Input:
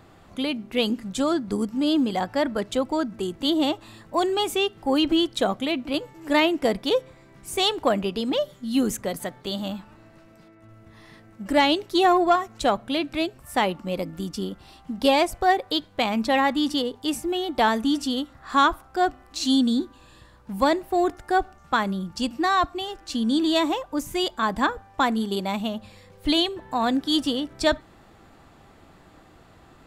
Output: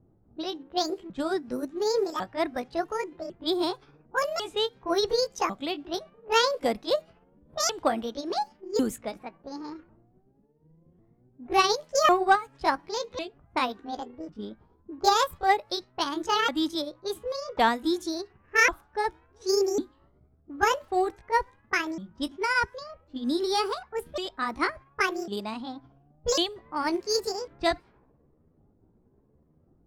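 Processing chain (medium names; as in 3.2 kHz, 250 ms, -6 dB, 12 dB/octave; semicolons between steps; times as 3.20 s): sawtooth pitch modulation +9 st, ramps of 1099 ms; level-controlled noise filter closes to 320 Hz, open at -22 dBFS; upward expansion 1.5:1, over -30 dBFS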